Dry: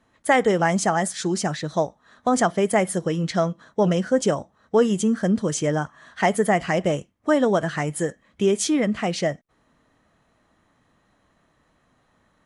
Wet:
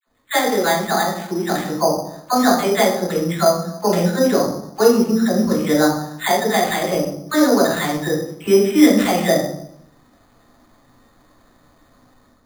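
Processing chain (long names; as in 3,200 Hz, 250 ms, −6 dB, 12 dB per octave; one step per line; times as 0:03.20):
dynamic equaliser 1,900 Hz, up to +5 dB, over −35 dBFS, Q 0.91
automatic gain control
all-pass dispersion lows, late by 70 ms, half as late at 950 Hz
convolution reverb RT60 0.75 s, pre-delay 3 ms, DRR −3.5 dB
bad sample-rate conversion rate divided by 8×, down filtered, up hold
level −7 dB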